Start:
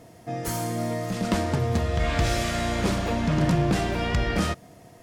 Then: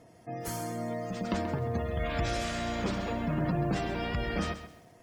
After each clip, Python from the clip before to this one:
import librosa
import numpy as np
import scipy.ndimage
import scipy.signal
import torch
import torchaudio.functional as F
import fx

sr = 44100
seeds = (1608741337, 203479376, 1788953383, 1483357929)

y = fx.spec_gate(x, sr, threshold_db=-30, keep='strong')
y = fx.low_shelf(y, sr, hz=140.0, db=-3.0)
y = fx.echo_crushed(y, sr, ms=133, feedback_pct=35, bits=8, wet_db=-11.5)
y = y * librosa.db_to_amplitude(-6.5)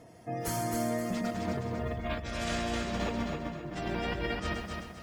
y = fx.over_compress(x, sr, threshold_db=-34.0, ratio=-0.5)
y = fx.echo_feedback(y, sr, ms=261, feedback_pct=35, wet_db=-4.0)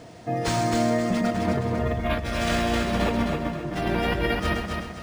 y = fx.quant_dither(x, sr, seeds[0], bits=10, dither='none')
y = np.interp(np.arange(len(y)), np.arange(len(y))[::3], y[::3])
y = y * librosa.db_to_amplitude(9.0)